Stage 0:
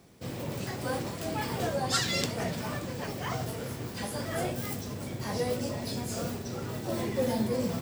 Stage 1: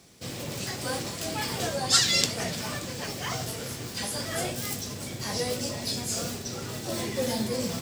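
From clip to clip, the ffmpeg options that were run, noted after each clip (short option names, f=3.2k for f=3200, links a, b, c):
-af "equalizer=f=6.2k:t=o:w=2.7:g=11,bandreject=f=940:w=30,volume=-1dB"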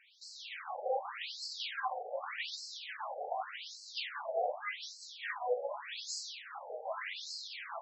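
-filter_complex "[0:a]flanger=delay=6.2:depth=8.5:regen=-61:speed=0.74:shape=triangular,acrossover=split=480 3600:gain=0.251 1 0.178[a][b][c];[a][b][c]amix=inputs=3:normalize=0,afftfilt=real='re*between(b*sr/1024,580*pow(5800/580,0.5+0.5*sin(2*PI*0.85*pts/sr))/1.41,580*pow(5800/580,0.5+0.5*sin(2*PI*0.85*pts/sr))*1.41)':imag='im*between(b*sr/1024,580*pow(5800/580,0.5+0.5*sin(2*PI*0.85*pts/sr))/1.41,580*pow(5800/580,0.5+0.5*sin(2*PI*0.85*pts/sr))*1.41)':win_size=1024:overlap=0.75,volume=8dB"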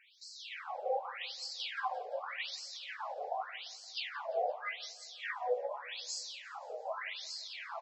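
-af "aecho=1:1:173|346|519|692:0.0708|0.0425|0.0255|0.0153"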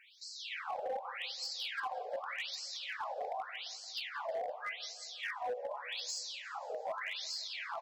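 -af "alimiter=level_in=8dB:limit=-24dB:level=0:latency=1:release=311,volume=-8dB,volume=35.5dB,asoftclip=hard,volume=-35.5dB,volume=3dB"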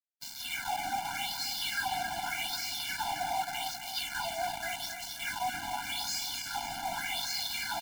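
-af "acrusher=bits=6:mix=0:aa=0.000001,aecho=1:1:268|536|804|1072|1340:0.447|0.197|0.0865|0.0381|0.0167,afftfilt=real='re*eq(mod(floor(b*sr/1024/340),2),0)':imag='im*eq(mod(floor(b*sr/1024/340),2),0)':win_size=1024:overlap=0.75,volume=8dB"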